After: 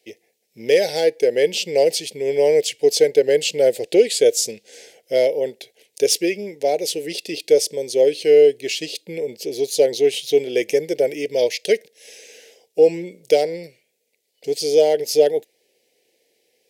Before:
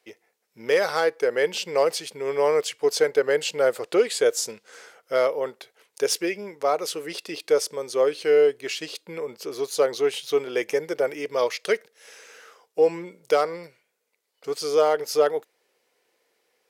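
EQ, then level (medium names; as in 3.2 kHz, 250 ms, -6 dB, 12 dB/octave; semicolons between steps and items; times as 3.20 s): Butterworth band-stop 1.2 kHz, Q 0.74; +6.5 dB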